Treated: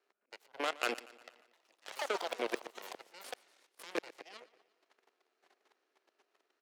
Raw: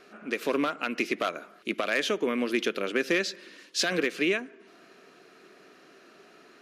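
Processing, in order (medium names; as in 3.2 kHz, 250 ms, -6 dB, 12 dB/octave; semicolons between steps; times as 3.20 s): slow attack 445 ms; level held to a coarse grid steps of 9 dB; Chebyshev shaper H 5 -41 dB, 7 -16 dB, 8 -21 dB, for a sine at -22.5 dBFS; ladder high-pass 300 Hz, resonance 25%; feedback delay 118 ms, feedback 57%, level -19.5 dB; 1.41–3.97 s: ever faster or slower copies 118 ms, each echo +6 st, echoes 2; trim +10 dB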